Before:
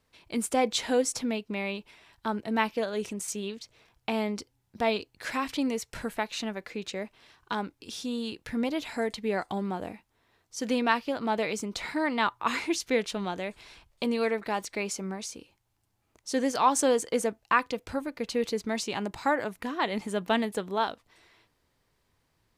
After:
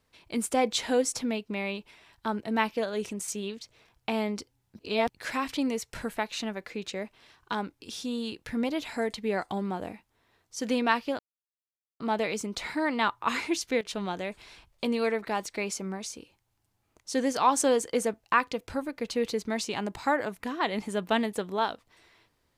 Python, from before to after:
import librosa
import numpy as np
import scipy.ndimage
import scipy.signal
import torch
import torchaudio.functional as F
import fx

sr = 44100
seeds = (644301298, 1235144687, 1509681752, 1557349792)

y = fx.edit(x, sr, fx.reverse_span(start_s=4.79, length_s=0.3),
    fx.insert_silence(at_s=11.19, length_s=0.81),
    fx.fade_down_up(start_s=12.68, length_s=0.68, db=-15.5, fade_s=0.32, curve='log'), tone=tone)